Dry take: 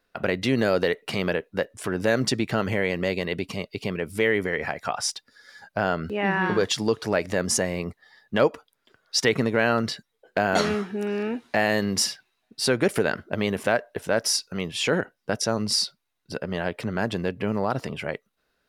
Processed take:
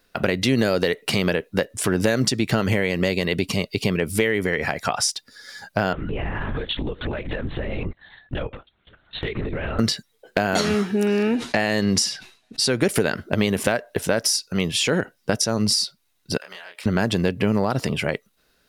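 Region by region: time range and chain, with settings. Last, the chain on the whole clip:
5.93–9.79 s: LPC vocoder at 8 kHz whisper + compression 16:1, threshold -31 dBFS
11.35–12.69 s: low-pass 9.1 kHz + decay stretcher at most 140 dB/s
16.37–16.86 s: high-pass 1.1 kHz + compression 8:1, threshold -44 dBFS + doubling 28 ms -3 dB
whole clip: treble shelf 2.4 kHz +11.5 dB; compression 4:1, threshold -23 dBFS; bass shelf 490 Hz +8 dB; trim +2.5 dB

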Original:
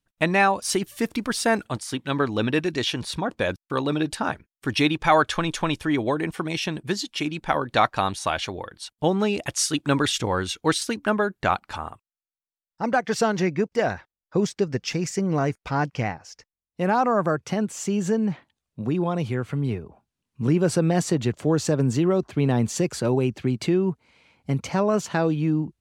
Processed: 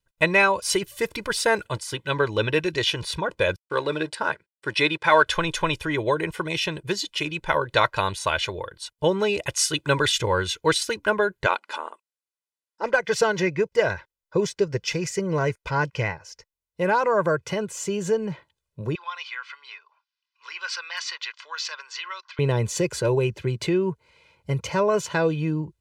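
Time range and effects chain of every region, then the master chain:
3.59–5.26 s: companding laws mixed up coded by A + cabinet simulation 180–9500 Hz, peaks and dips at 1.7 kHz +3 dB, 2.8 kHz -3 dB, 6.5 kHz -8 dB
11.46–12.94 s: brick-wall FIR band-pass 210–12000 Hz + loudspeaker Doppler distortion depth 0.16 ms
18.95–22.39 s: elliptic band-pass 1.1–5.1 kHz, stop band 80 dB + treble shelf 2.5 kHz +7 dB + hard clipper -21.5 dBFS
whole clip: dynamic bell 2.4 kHz, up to +4 dB, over -40 dBFS, Q 1.1; comb 2 ms, depth 78%; trim -1.5 dB

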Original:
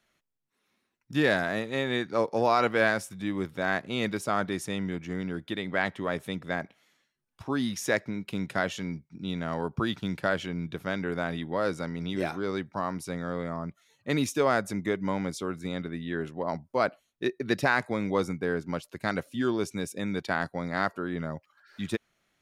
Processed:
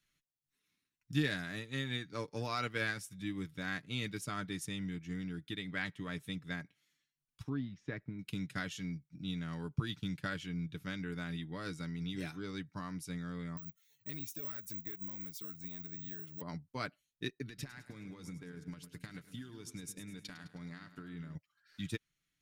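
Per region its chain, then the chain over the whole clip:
7.49–8.19 s: block-companded coder 7-bit + tape spacing loss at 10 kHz 43 dB
13.57–16.41 s: compression 2.5:1, threshold -43 dBFS + careless resampling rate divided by 2×, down none, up zero stuff
17.43–21.35 s: compression 16:1, threshold -33 dBFS + two-band feedback delay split 410 Hz, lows 146 ms, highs 105 ms, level -11 dB
whole clip: amplifier tone stack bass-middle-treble 6-0-2; comb 6.8 ms, depth 44%; transient shaper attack +3 dB, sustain -4 dB; trim +9.5 dB

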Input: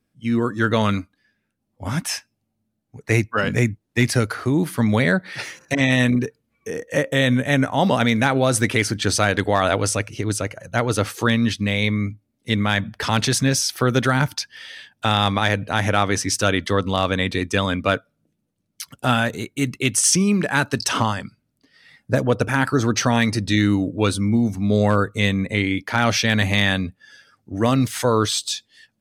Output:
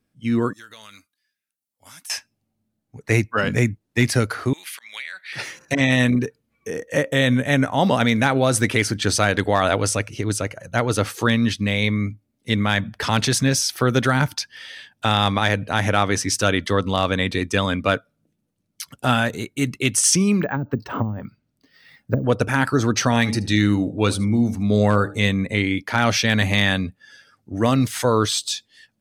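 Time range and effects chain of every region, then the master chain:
0.53–2.10 s: pre-emphasis filter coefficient 0.97 + compression 3:1, threshold -40 dBFS
4.53–5.33 s: slow attack 234 ms + resonant high-pass 2.4 kHz, resonance Q 2.3 + compression 10:1, threshold -28 dBFS
20.40–22.24 s: low-pass that closes with the level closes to 300 Hz, closed at -15.5 dBFS + band-stop 7.3 kHz, Q 17 + careless resampling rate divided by 2×, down filtered, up hold
23.08–25.29 s: de-hum 75.39 Hz, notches 11 + delay 77 ms -20 dB
whole clip: none

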